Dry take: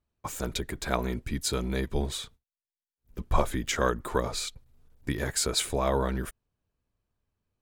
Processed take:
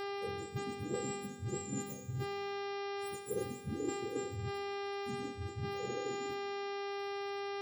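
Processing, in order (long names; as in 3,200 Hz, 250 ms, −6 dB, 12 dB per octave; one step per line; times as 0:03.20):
frequency axis turned over on the octave scale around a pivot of 680 Hz
source passing by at 0:02.38, 8 m/s, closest 2.9 metres
Chebyshev band-stop filter 500–7,200 Hz, order 5
high-shelf EQ 4,600 Hz −12 dB
upward compression, threshold −59 dBFS
hum with harmonics 400 Hz, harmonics 14, −55 dBFS −7 dB per octave
reversed playback
downward compressor 16 to 1, threshold −48 dBFS, peak gain reduction 21.5 dB
reversed playback
low-shelf EQ 250 Hz −8.5 dB
on a send: convolution reverb RT60 1.9 s, pre-delay 4 ms, DRR 9 dB
on the sum: level +17 dB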